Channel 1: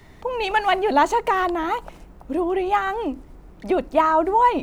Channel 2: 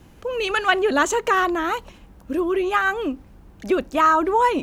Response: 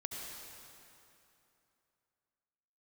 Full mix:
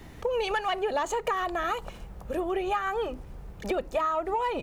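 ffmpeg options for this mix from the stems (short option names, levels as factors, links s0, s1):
-filter_complex "[0:a]equalizer=f=120:t=o:w=0.41:g=6,acontrast=79,volume=0.335,asplit=2[s0][s1];[1:a]adelay=1.7,volume=0.944[s2];[s1]apad=whole_len=204185[s3];[s2][s3]sidechaincompress=threshold=0.0501:ratio=8:attack=16:release=617[s4];[s0][s4]amix=inputs=2:normalize=0,acompressor=threshold=0.0562:ratio=6"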